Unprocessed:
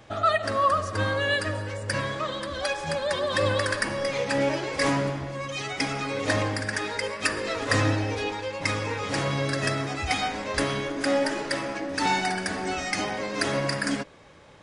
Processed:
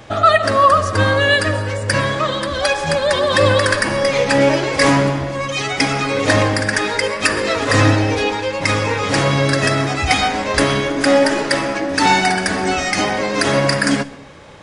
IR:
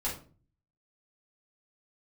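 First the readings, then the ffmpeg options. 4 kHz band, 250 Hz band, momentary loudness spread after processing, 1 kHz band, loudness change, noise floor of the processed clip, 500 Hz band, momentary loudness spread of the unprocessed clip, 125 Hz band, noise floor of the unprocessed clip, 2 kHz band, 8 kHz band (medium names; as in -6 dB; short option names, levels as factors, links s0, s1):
+10.5 dB, +11.0 dB, 6 LU, +11.0 dB, +11.0 dB, -26 dBFS, +11.0 dB, 6 LU, +11.0 dB, -37 dBFS, +10.5 dB, +10.5 dB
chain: -filter_complex "[0:a]asplit=2[s0][s1];[1:a]atrim=start_sample=2205,adelay=117[s2];[s1][s2]afir=irnorm=-1:irlink=0,volume=0.0668[s3];[s0][s3]amix=inputs=2:normalize=0,alimiter=level_in=3.98:limit=0.891:release=50:level=0:latency=1,volume=0.891"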